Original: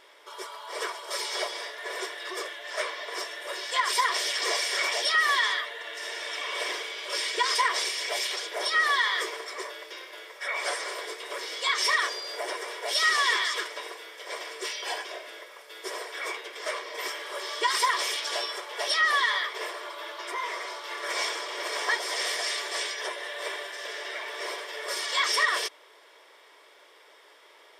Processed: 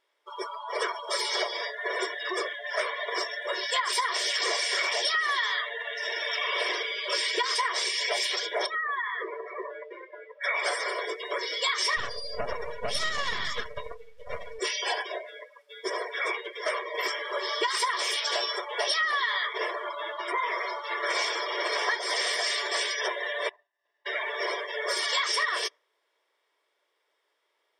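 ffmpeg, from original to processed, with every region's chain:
ffmpeg -i in.wav -filter_complex "[0:a]asettb=1/sr,asplit=3[link_01][link_02][link_03];[link_01]atrim=end=8.664[link_04];[link_02]atrim=start=8.66:end=10.44,asetpts=PTS-STARTPTS,afade=type=in:duration=0.004:curve=qsin,afade=type=out:start_time=1.776:duration=0.004:curve=qsin,lowpass=2200,acompressor=threshold=-38dB:ratio=2.5:attack=3.2:release=140:knee=1:detection=peak,lowshelf=frequency=250:gain=5.5[link_05];[link_03]atrim=start=10.436[link_06];[link_04][link_05]acrossfade=duration=0.004:curve1=hsin:curve2=qsin[link_07];[link_07][link_06]acrossfade=duration=0.004:curve1=qsin:curve2=hsin,asettb=1/sr,asplit=3[link_08][link_09][link_10];[link_08]atrim=end=11.974[link_11];[link_09]atrim=start=11.97:end=14.59,asetpts=PTS-STARTPTS,afade=type=in:duration=0.004:curve=qsin,afade=type=out:start_time=2.616:duration=0.004:curve=qsin,lowshelf=frequency=380:width_type=q:width=3:gain=-6.5,aeval=exprs='max(val(0),0)':channel_layout=same[link_12];[link_10]atrim=start=14.586[link_13];[link_11][link_12]acrossfade=duration=0.004:curve1=hsin:curve2=qsin[link_14];[link_14][link_13]acrossfade=duration=0.004:curve1=qsin:curve2=hsin,asettb=1/sr,asplit=3[link_15][link_16][link_17];[link_15]atrim=end=23.494[link_18];[link_16]atrim=start=23.49:end=24.06,asetpts=PTS-STARTPTS,afade=type=in:duration=0.004:curve=qsin,afade=type=out:start_time=0.566:duration=0.004:curve=qsin,agate=range=-33dB:threshold=-26dB:ratio=3:release=100:detection=peak,lowpass=frequency=1300:poles=1,aecho=1:1:1.1:0.58,atrim=end_sample=25137[link_19];[link_17]atrim=start=24.056[link_20];[link_18][link_19]acrossfade=duration=0.004:curve1=hsin:curve2=qsin[link_21];[link_21][link_20]acrossfade=duration=0.004:curve1=qsin:curve2=hsin,afftdn=noise_reduction=27:noise_floor=-37,acompressor=threshold=-31dB:ratio=6,volume=6.5dB" out.wav

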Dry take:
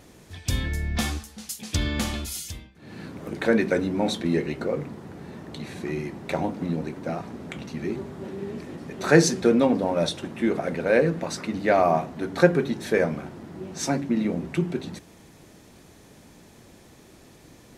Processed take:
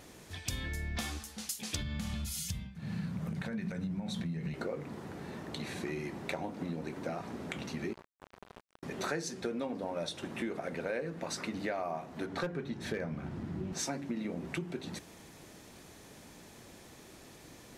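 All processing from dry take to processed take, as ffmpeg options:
ffmpeg -i in.wav -filter_complex "[0:a]asettb=1/sr,asplit=3[link_01][link_02][link_03];[link_01]atrim=end=1.814[link_04];[link_02]atrim=start=1.81:end=4.54,asetpts=PTS-STARTPTS,afade=type=in:duration=0.004:curve=qsin,afade=type=out:start_time=2.726:duration=0.004:curve=qsin,highpass=45,acompressor=threshold=-30dB:ratio=6:attack=3.2:release=140:knee=1:detection=peak,lowshelf=frequency=240:width_type=q:width=3:gain=9.5[link_05];[link_03]atrim=start=4.536[link_06];[link_04][link_05]acrossfade=duration=0.004:curve1=hsin:curve2=qsin[link_07];[link_07][link_06]acrossfade=duration=0.004:curve1=qsin:curve2=hsin,asettb=1/sr,asplit=3[link_08][link_09][link_10];[link_08]atrim=end=7.934[link_11];[link_09]atrim=start=7.93:end=8.83,asetpts=PTS-STARTPTS,afade=type=in:duration=0.004:curve=qsin,afade=type=out:start_time=0.896:duration=0.004:curve=qsin,asplit=2[link_12][link_13];[link_13]adelay=34,volume=-4dB[link_14];[link_12][link_14]amix=inputs=2:normalize=0,atrim=end_sample=39690,acrusher=bits=3:mix=0:aa=0.5,acompressor=threshold=-48dB:ratio=2:attack=3.2:release=140:knee=1:detection=peak[link_15];[link_10]atrim=start=8.826[link_16];[link_11][link_15]acrossfade=duration=0.004:curve1=hsin:curve2=qsin[link_17];[link_17][link_16]acrossfade=duration=0.004:curve1=qsin:curve2=hsin,asettb=1/sr,asplit=3[link_18][link_19][link_20];[link_18]atrim=end=12.264[link_21];[link_19]atrim=start=12.26:end=13.73,asetpts=PTS-STARTPTS,afade=type=in:duration=0.004:curve=qsin,afade=type=out:start_time=1.466:duration=0.004:curve=qsin,asubboost=boost=8.5:cutoff=240,lowpass=frequency=3800:poles=1,asoftclip=type=hard:threshold=-12dB[link_22];[link_20]atrim=start=13.726[link_23];[link_21][link_22]acrossfade=duration=0.004:curve1=hsin:curve2=qsin[link_24];[link_24][link_23]acrossfade=duration=0.004:curve1=qsin:curve2=hsin,lowshelf=frequency=470:gain=-5,acompressor=threshold=-34dB:ratio=6" out.wav

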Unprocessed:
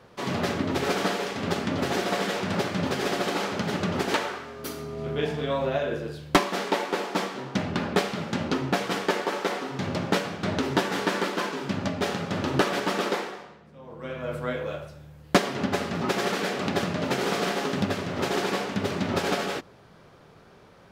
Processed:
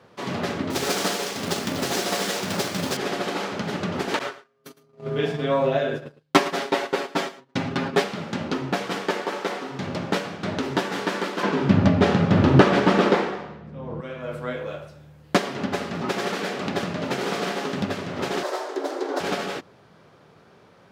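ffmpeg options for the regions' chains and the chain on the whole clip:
ffmpeg -i in.wav -filter_complex "[0:a]asettb=1/sr,asplit=3[link_01][link_02][link_03];[link_01]atrim=end=0.704[link_04];[link_02]atrim=start=0.7:end=2.97,asetpts=PTS-STARTPTS,afade=type=in:duration=0.004:curve=qsin,afade=type=out:start_time=2.266:duration=0.004:curve=qsin,bass=frequency=250:gain=-1,treble=frequency=4000:gain=12,acrusher=bits=2:mode=log:mix=0:aa=0.000001[link_05];[link_03]atrim=start=2.966[link_06];[link_04][link_05]acrossfade=duration=0.004:curve1=hsin:curve2=qsin[link_07];[link_07][link_06]acrossfade=duration=0.004:curve1=qsin:curve2=hsin,asettb=1/sr,asplit=3[link_08][link_09][link_10];[link_08]atrim=end=4.194[link_11];[link_09]atrim=start=4.19:end=8.04,asetpts=PTS-STARTPTS,afade=type=in:duration=0.004:curve=qsin,afade=type=out:start_time=3.846:duration=0.004:curve=qsin,agate=range=-33dB:threshold=-32dB:ratio=16:release=100:detection=peak,aecho=1:1:7.4:0.95,atrim=end_sample=169785,aecho=1:1:109:0.15,atrim=end_sample=169785[link_12];[link_10]atrim=start=8.036[link_13];[link_11][link_12]acrossfade=duration=0.004:curve1=hsin:curve2=qsin[link_14];[link_14][link_13]acrossfade=duration=0.004:curve1=qsin:curve2=hsin,asettb=1/sr,asplit=3[link_15][link_16][link_17];[link_15]atrim=end=11.434[link_18];[link_16]atrim=start=11.43:end=14.01,asetpts=PTS-STARTPTS,afade=type=in:duration=0.004:curve=qsin,afade=type=out:start_time=2.576:duration=0.004:curve=qsin,acontrast=79,aemphasis=mode=reproduction:type=bsi[link_19];[link_17]atrim=start=14.006[link_20];[link_18][link_19]acrossfade=duration=0.004:curve1=hsin:curve2=qsin[link_21];[link_21][link_20]acrossfade=duration=0.004:curve1=qsin:curve2=hsin,asettb=1/sr,asplit=3[link_22][link_23][link_24];[link_22]atrim=end=18.434[link_25];[link_23]atrim=start=18.43:end=19.2,asetpts=PTS-STARTPTS,afade=type=in:duration=0.004:curve=qsin,afade=type=out:start_time=0.766:duration=0.004:curve=qsin,equalizer=frequency=2400:width_type=o:width=0.98:gain=-10.5,afreqshift=180[link_26];[link_24]atrim=start=19.196[link_27];[link_25][link_26]acrossfade=duration=0.004:curve1=hsin:curve2=qsin[link_28];[link_28][link_27]acrossfade=duration=0.004:curve1=qsin:curve2=hsin,highpass=93,highshelf=frequency=9600:gain=-5" out.wav

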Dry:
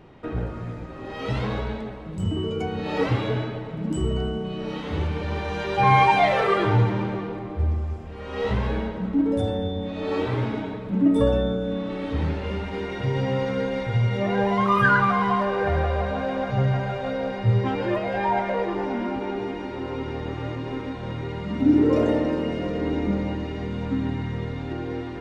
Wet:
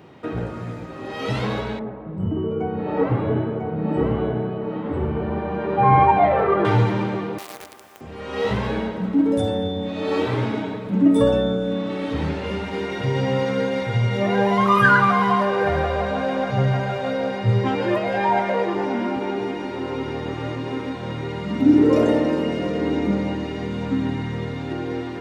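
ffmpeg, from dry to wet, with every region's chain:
ffmpeg -i in.wav -filter_complex "[0:a]asettb=1/sr,asplit=3[link_01][link_02][link_03];[link_01]atrim=end=1.794[link_04];[link_02]atrim=start=1.79:end=6.65,asetpts=PTS-STARTPTS,afade=type=in:duration=0.004:curve=qsin,afade=type=out:start_time=4.856:duration=0.004:curve=qsin,lowpass=1200,aecho=1:1:997:0.668,atrim=end_sample=214326[link_05];[link_03]atrim=start=6.646[link_06];[link_04][link_05]acrossfade=duration=0.004:curve1=hsin:curve2=qsin[link_07];[link_07][link_06]acrossfade=duration=0.004:curve1=qsin:curve2=hsin,asettb=1/sr,asplit=3[link_08][link_09][link_10];[link_08]atrim=end=7.384[link_11];[link_09]atrim=start=7.38:end=8.01,asetpts=PTS-STARTPTS,afade=type=in:duration=0.004:curve=qsin,afade=type=out:start_time=0.626:duration=0.004:curve=qsin,highpass=620,acrusher=bits=7:dc=4:mix=0:aa=0.000001[link_12];[link_10]atrim=start=8.006[link_13];[link_11][link_12]acrossfade=duration=0.004:curve1=hsin:curve2=qsin[link_14];[link_14][link_13]acrossfade=duration=0.004:curve1=qsin:curve2=hsin,highpass=110,highshelf=frequency=6700:gain=7.5,volume=3.5dB" out.wav

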